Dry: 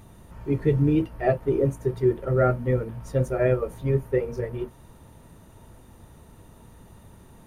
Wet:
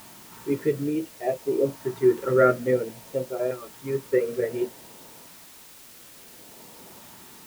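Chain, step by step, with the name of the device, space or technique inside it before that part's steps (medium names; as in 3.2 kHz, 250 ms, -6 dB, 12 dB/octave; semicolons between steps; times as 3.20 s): shortwave radio (band-pass 300–2900 Hz; tremolo 0.43 Hz, depth 70%; LFO notch saw up 0.57 Hz 430–2100 Hz; white noise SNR 21 dB); trim +7 dB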